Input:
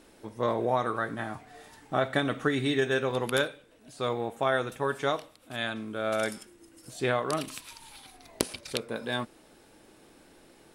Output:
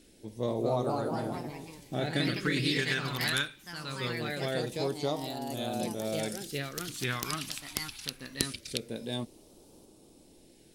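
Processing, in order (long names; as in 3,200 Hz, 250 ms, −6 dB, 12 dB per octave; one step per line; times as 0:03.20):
delay with pitch and tempo change per echo 278 ms, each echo +2 semitones, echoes 3
all-pass phaser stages 2, 0.23 Hz, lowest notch 520–1,700 Hz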